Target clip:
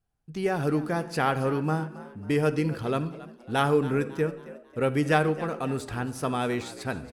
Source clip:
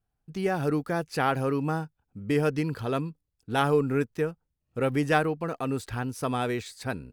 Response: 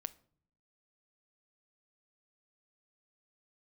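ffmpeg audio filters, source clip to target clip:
-filter_complex "[0:a]asplit=5[a][b][c][d][e];[b]adelay=273,afreqshift=63,volume=-17dB[f];[c]adelay=546,afreqshift=126,volume=-24.3dB[g];[d]adelay=819,afreqshift=189,volume=-31.7dB[h];[e]adelay=1092,afreqshift=252,volume=-39dB[i];[a][f][g][h][i]amix=inputs=5:normalize=0[j];[1:a]atrim=start_sample=2205,atrim=end_sample=6174,asetrate=22932,aresample=44100[k];[j][k]afir=irnorm=-1:irlink=0"

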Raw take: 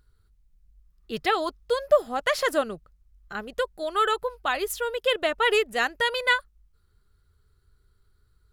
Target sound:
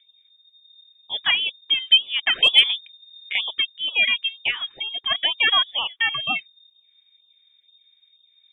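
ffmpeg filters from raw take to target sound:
-filter_complex "[0:a]asplit=3[a][b][c];[a]afade=t=out:st=4.5:d=0.02[d];[b]acompressor=threshold=-29dB:ratio=3,afade=t=in:st=4.5:d=0.02,afade=t=out:st=5.09:d=0.02[e];[c]afade=t=in:st=5.09:d=0.02[f];[d][e][f]amix=inputs=3:normalize=0,asplit=3[g][h][i];[g]afade=t=out:st=5.7:d=0.02[j];[h]highpass=280,afade=t=in:st=5.7:d=0.02,afade=t=out:st=6.18:d=0.02[k];[i]afade=t=in:st=6.18:d=0.02[l];[j][k][l]amix=inputs=3:normalize=0,lowpass=f=3.1k:t=q:w=0.5098,lowpass=f=3.1k:t=q:w=0.6013,lowpass=f=3.1k:t=q:w=0.9,lowpass=f=3.1k:t=q:w=2.563,afreqshift=-3700,asplit=3[m][n][o];[m]afade=t=out:st=2.35:d=0.02[p];[n]acontrast=69,afade=t=in:st=2.35:d=0.02,afade=t=out:st=3.5:d=0.02[q];[o]afade=t=in:st=3.5:d=0.02[r];[p][q][r]amix=inputs=3:normalize=0,afftfilt=real='re*(1-between(b*sr/1024,430*pow(1900/430,0.5+0.5*sin(2*PI*2.1*pts/sr))/1.41,430*pow(1900/430,0.5+0.5*sin(2*PI*2.1*pts/sr))*1.41))':imag='im*(1-between(b*sr/1024,430*pow(1900/430,0.5+0.5*sin(2*PI*2.1*pts/sr))/1.41,430*pow(1900/430,0.5+0.5*sin(2*PI*2.1*pts/sr))*1.41))':win_size=1024:overlap=0.75,volume=3.5dB"

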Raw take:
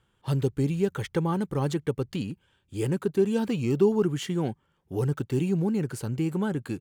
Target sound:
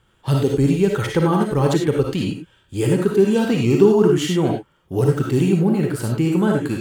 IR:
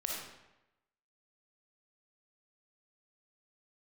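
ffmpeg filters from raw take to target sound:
-filter_complex "[0:a]asettb=1/sr,asplit=3[a][b][c];[a]atrim=end=5.524[d];[b]atrim=start=5.52:end=6,asetpts=PTS-STARTPTS,afade=t=in:d=0.004:c=qsin,afade=t=out:st=0.476:d=0.004:c=qsin,equalizer=f=6.4k:t=o:w=0.59:g=-9.5[e];[c]atrim=start=5.996[f];[d][e]acrossfade=d=0.004:c1=hsin:c2=qsin[g];[g][f]acrossfade=d=0.004:c1=qsin:c2=hsin[h];[1:a]atrim=start_sample=2205,afade=t=out:st=0.16:d=0.01,atrim=end_sample=7497[i];[h][i]afir=irnorm=-1:irlink=0,volume=9dB"

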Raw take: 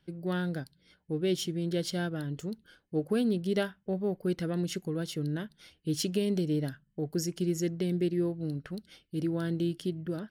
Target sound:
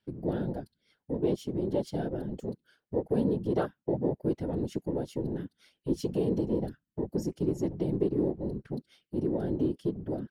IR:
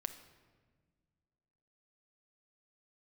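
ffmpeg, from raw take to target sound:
-filter_complex "[0:a]asplit=2[a][b];[b]acompressor=threshold=-42dB:ratio=20,volume=2dB[c];[a][c]amix=inputs=2:normalize=0,afwtdn=0.0251,highpass=f=290:p=1,afftfilt=real='hypot(re,im)*cos(2*PI*random(0))':imag='hypot(re,im)*sin(2*PI*random(1))':win_size=512:overlap=0.75,volume=8.5dB"

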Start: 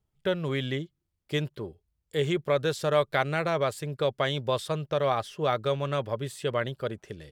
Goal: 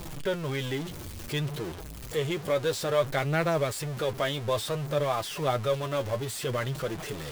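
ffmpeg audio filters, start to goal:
-af "aeval=exprs='val(0)+0.5*0.0376*sgn(val(0))':c=same,flanger=delay=5.7:depth=5.3:regen=39:speed=0.58:shape=triangular"

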